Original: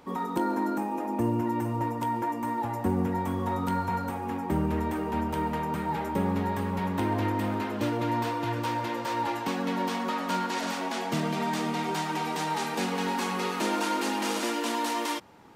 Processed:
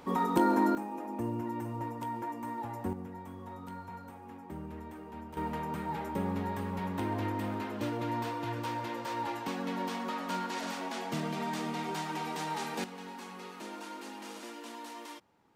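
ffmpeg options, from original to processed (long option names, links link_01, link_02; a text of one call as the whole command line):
ffmpeg -i in.wav -af "asetnsamples=nb_out_samples=441:pad=0,asendcmd='0.75 volume volume -8dB;2.93 volume volume -15.5dB;5.37 volume volume -6dB;12.84 volume volume -15.5dB',volume=2dB" out.wav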